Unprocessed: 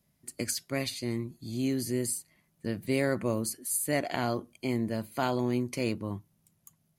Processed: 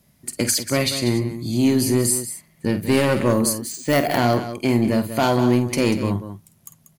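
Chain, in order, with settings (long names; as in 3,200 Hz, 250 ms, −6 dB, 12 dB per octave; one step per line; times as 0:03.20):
sine wavefolder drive 6 dB, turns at −14.5 dBFS
0:03.56–0:04.18: bad sample-rate conversion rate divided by 3×, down filtered, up hold
loudspeakers that aren't time-aligned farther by 17 metres −11 dB, 65 metres −11 dB
level +3 dB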